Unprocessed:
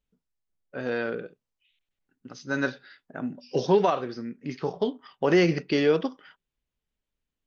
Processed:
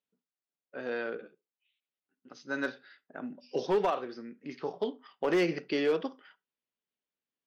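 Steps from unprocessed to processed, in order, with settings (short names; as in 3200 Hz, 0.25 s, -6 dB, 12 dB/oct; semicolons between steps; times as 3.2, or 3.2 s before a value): BPF 250–5300 Hz; overloaded stage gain 16 dB; on a send at -22.5 dB: reverb RT60 0.20 s, pre-delay 46 ms; 1.17–2.31 on the sum: ensemble effect; gain -5 dB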